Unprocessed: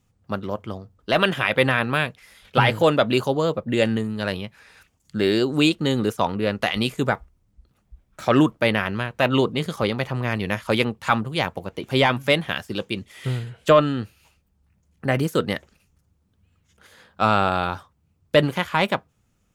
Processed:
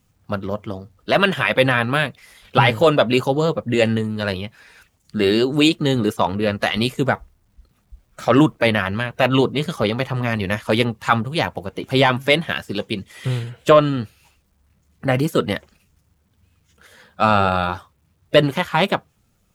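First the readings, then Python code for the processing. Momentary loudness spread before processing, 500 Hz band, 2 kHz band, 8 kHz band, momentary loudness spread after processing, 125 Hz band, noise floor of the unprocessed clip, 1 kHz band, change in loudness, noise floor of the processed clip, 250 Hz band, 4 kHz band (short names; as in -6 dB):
11 LU, +3.0 dB, +2.5 dB, +3.0 dB, 11 LU, +3.5 dB, -67 dBFS, +3.0 dB, +3.0 dB, -64 dBFS, +3.0 dB, +3.0 dB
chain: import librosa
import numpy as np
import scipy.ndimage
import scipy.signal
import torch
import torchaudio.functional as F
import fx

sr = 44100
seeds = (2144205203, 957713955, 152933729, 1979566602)

y = fx.spec_quant(x, sr, step_db=15)
y = fx.quant_dither(y, sr, seeds[0], bits=12, dither='none')
y = F.gain(torch.from_numpy(y), 3.5).numpy()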